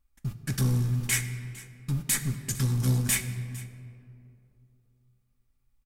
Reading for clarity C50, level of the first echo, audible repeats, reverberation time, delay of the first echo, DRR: 10.0 dB, −19.0 dB, 1, 2.6 s, 455 ms, 6.5 dB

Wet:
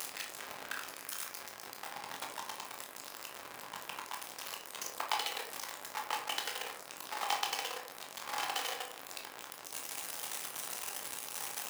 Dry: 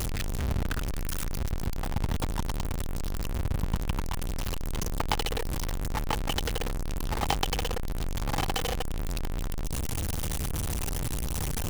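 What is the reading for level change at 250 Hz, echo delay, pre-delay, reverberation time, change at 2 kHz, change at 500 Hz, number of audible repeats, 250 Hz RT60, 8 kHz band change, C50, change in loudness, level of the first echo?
−22.0 dB, no echo audible, 16 ms, 0.50 s, −3.0 dB, −11.0 dB, no echo audible, 0.65 s, −3.5 dB, 7.0 dB, −7.5 dB, no echo audible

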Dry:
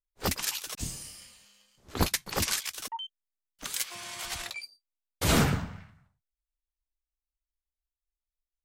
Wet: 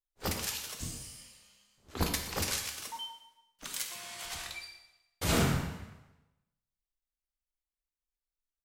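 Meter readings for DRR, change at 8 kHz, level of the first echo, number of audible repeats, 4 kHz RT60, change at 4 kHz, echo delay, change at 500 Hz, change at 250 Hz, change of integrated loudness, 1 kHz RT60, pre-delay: 3.0 dB, −4.0 dB, −15.0 dB, 1, 0.90 s, −3.5 dB, 119 ms, −3.0 dB, −3.5 dB, −4.0 dB, 1.0 s, 5 ms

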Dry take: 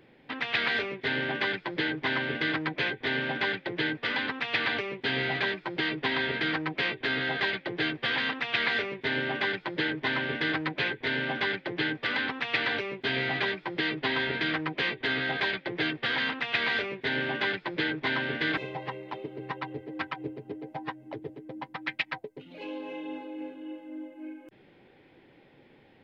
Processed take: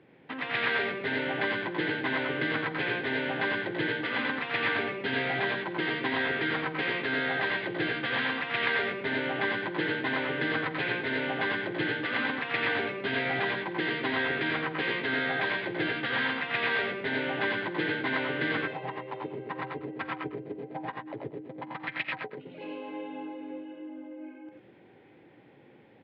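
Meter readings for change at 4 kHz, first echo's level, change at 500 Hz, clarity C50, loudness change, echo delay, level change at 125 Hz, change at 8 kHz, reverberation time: −4.0 dB, −19.5 dB, +1.5 dB, no reverb audible, −0.5 dB, 49 ms, −0.5 dB, can't be measured, no reverb audible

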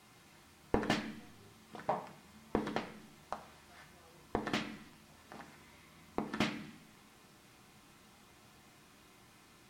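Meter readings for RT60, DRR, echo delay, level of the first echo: 0.70 s, 2.0 dB, no echo audible, no echo audible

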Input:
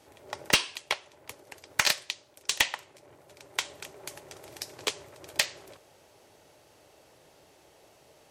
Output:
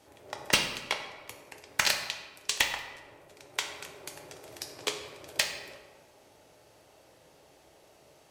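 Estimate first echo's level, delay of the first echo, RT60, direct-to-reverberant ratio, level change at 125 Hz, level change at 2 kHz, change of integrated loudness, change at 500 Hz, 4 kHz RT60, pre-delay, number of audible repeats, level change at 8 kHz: no echo audible, no echo audible, 1.3 s, 4.0 dB, −0.5 dB, −1.0 dB, −1.5 dB, 0.0 dB, 0.85 s, 7 ms, no echo audible, −1.5 dB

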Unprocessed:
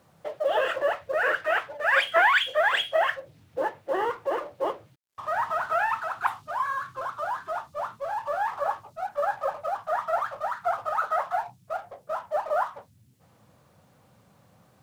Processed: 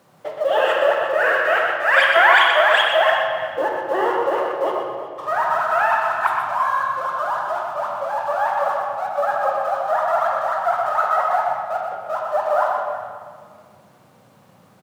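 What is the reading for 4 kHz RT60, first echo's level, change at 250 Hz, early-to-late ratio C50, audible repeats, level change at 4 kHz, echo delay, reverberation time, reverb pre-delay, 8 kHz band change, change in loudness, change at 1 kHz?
1.5 s, −5.5 dB, +9.0 dB, 0.0 dB, 2, +8.0 dB, 123 ms, 1.9 s, 32 ms, can't be measured, +8.0 dB, +8.5 dB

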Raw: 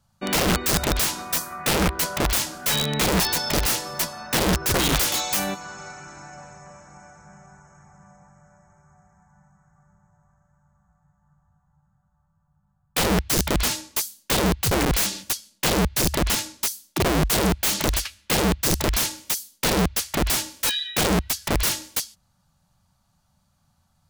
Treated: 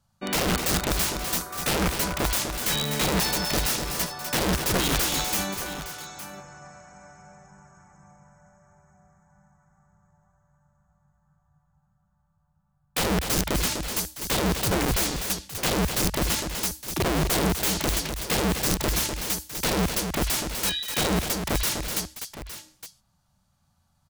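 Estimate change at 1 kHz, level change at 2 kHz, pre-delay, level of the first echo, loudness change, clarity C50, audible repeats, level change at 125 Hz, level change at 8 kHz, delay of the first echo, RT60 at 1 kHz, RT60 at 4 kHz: −2.5 dB, −2.5 dB, no reverb audible, −7.0 dB, −2.5 dB, no reverb audible, 2, −2.5 dB, −2.5 dB, 249 ms, no reverb audible, no reverb audible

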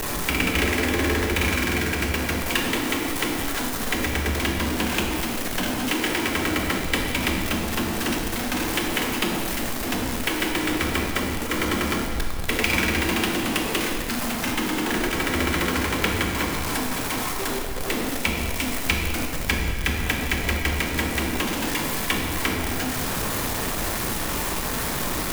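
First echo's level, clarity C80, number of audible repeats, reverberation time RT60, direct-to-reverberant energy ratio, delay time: no echo audible, 4.5 dB, no echo audible, 1.7 s, 1.0 dB, no echo audible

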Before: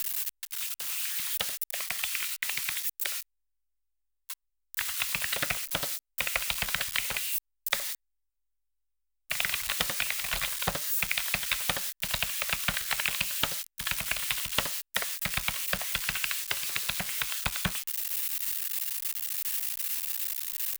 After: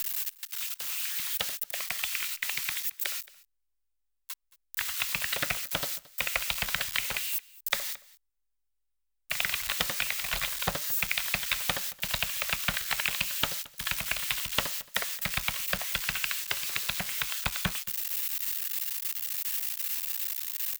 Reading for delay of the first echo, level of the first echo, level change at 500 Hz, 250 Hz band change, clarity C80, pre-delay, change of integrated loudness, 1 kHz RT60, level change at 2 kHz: 222 ms, −21.5 dB, 0.0 dB, 0.0 dB, no reverb audible, no reverb audible, −0.5 dB, no reverb audible, 0.0 dB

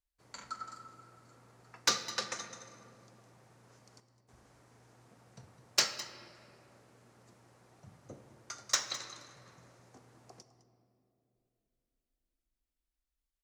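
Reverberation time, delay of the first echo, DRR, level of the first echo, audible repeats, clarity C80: 3.0 s, 208 ms, 8.0 dB, −15.5 dB, 1, 10.5 dB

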